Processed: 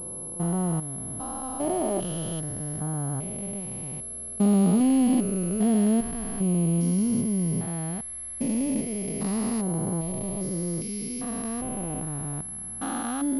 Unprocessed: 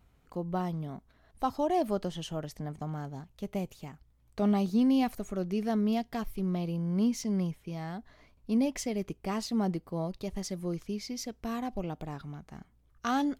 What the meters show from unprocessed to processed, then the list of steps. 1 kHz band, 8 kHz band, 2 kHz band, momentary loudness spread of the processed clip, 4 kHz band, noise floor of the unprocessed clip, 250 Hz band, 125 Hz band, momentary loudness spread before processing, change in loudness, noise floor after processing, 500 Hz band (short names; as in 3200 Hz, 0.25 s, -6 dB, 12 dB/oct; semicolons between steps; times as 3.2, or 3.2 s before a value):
0.0 dB, +16.5 dB, +0.5 dB, 11 LU, -1.0 dB, -65 dBFS, +5.5 dB, +7.5 dB, 14 LU, +5.5 dB, -37 dBFS, +3.0 dB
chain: stepped spectrum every 0.4 s; low shelf 320 Hz +3 dB; wow and flutter 20 cents; pulse-width modulation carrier 11000 Hz; gain +6.5 dB